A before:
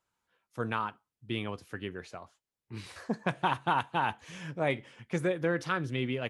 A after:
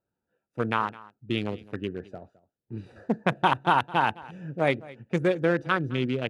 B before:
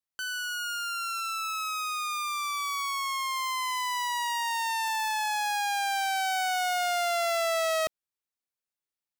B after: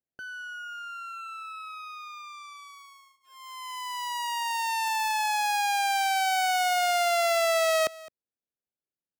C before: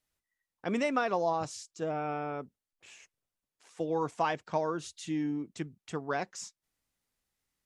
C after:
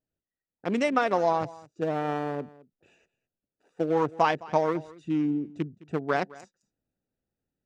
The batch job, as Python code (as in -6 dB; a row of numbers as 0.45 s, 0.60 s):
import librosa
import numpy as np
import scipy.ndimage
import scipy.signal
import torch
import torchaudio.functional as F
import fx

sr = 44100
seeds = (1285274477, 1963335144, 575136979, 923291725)

p1 = fx.wiener(x, sr, points=41)
p2 = fx.low_shelf(p1, sr, hz=70.0, db=-12.0)
p3 = fx.rider(p2, sr, range_db=4, speed_s=2.0)
p4 = p2 + F.gain(torch.from_numpy(p3), 2.0).numpy()
y = p4 + 10.0 ** (-20.5 / 20.0) * np.pad(p4, (int(212 * sr / 1000.0), 0))[:len(p4)]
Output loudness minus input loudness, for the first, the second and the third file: +6.0 LU, +2.5 LU, +5.5 LU